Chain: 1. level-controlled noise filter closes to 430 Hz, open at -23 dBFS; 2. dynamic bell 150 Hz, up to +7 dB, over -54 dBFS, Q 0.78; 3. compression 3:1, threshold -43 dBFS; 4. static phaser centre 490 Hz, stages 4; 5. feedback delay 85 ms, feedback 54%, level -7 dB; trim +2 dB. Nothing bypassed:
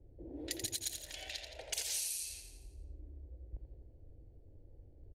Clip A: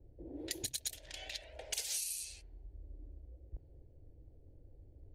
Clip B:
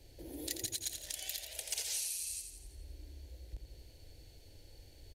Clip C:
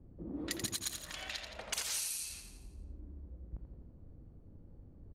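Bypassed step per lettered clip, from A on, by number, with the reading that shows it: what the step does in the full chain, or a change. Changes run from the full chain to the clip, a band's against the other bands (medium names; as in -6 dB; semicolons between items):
5, echo-to-direct -5.5 dB to none; 1, 1 kHz band -2.5 dB; 4, 1 kHz band +5.5 dB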